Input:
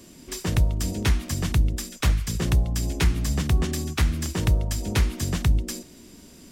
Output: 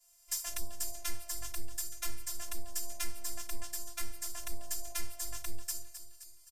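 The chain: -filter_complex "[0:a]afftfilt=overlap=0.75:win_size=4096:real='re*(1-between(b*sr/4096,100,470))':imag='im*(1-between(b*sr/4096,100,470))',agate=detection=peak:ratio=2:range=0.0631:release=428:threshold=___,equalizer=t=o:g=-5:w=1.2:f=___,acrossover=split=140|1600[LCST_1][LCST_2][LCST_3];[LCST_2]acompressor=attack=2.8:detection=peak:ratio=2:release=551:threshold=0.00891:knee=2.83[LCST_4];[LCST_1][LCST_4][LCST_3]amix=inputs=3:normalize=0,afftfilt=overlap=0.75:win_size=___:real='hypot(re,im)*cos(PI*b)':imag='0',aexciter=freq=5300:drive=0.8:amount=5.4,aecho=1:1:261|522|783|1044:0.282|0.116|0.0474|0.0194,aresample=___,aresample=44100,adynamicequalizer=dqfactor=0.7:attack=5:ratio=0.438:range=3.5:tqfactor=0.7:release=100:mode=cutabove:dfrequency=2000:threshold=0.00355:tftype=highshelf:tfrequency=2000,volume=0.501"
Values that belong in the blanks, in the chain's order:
0.0141, 100, 512, 32000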